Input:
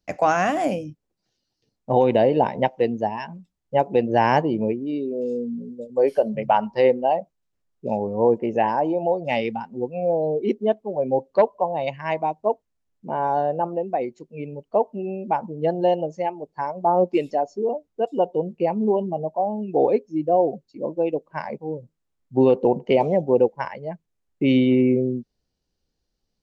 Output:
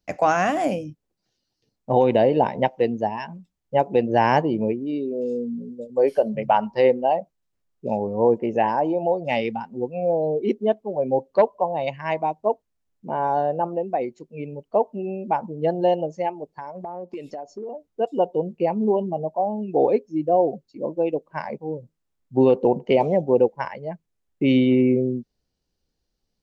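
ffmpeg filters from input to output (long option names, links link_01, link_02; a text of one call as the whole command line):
ffmpeg -i in.wav -filter_complex "[0:a]asettb=1/sr,asplit=3[link_01][link_02][link_03];[link_01]atrim=end=16.514[link_04];[link_02]atrim=start=16.51:end=17.87,asetpts=PTS-STARTPTS,afade=type=in:duration=0.004:curve=qsin,afade=type=out:start_time=1.356:duration=0.004:curve=qsin,acompressor=threshold=-30dB:ratio=8:attack=3.2:release=140:knee=1:detection=peak[link_05];[link_03]atrim=start=17.866[link_06];[link_04][link_05]acrossfade=duration=0.004:curve1=hsin:curve2=qsin[link_07];[link_07][link_06]acrossfade=duration=0.004:curve1=qsin:curve2=hsin" out.wav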